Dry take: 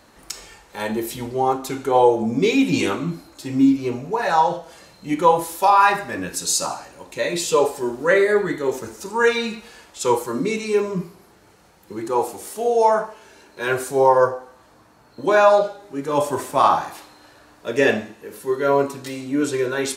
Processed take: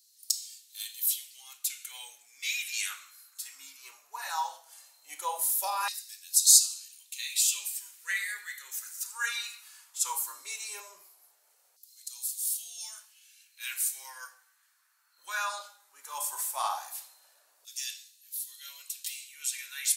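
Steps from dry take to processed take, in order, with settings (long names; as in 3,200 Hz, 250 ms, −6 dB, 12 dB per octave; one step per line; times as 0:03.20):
high-shelf EQ 6,600 Hz +10.5 dB
auto-filter high-pass saw down 0.17 Hz 530–4,800 Hz
first difference
one half of a high-frequency compander decoder only
level −4.5 dB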